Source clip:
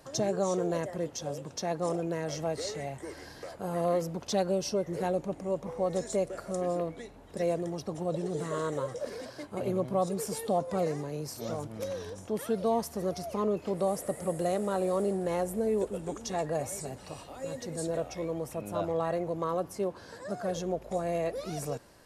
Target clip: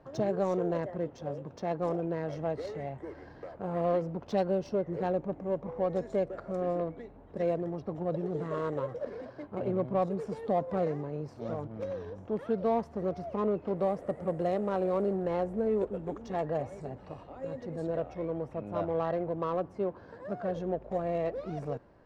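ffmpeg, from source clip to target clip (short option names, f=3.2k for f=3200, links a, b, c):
-af "adynamicsmooth=sensitivity=2:basefreq=1.5k"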